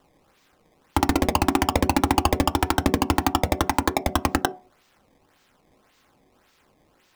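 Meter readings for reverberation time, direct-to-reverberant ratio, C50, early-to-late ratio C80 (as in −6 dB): non-exponential decay, 10.5 dB, 19.5 dB, 25.5 dB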